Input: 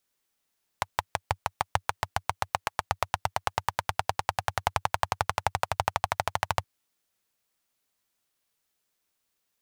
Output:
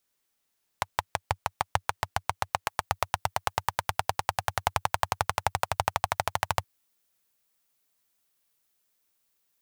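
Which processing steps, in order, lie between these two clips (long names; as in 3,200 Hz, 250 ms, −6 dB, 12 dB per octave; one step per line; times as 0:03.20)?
high-shelf EQ 10,000 Hz +2 dB, from 0:02.66 +7.5 dB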